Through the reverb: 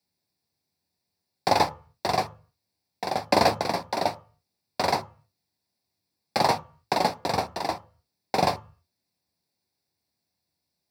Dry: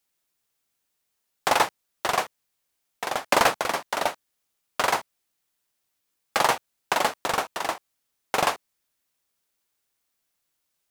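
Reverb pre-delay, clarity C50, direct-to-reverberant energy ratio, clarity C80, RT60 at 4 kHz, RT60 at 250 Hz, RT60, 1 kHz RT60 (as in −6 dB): 3 ms, 20.0 dB, 9.5 dB, 25.0 dB, 0.30 s, 0.40 s, 0.40 s, 0.40 s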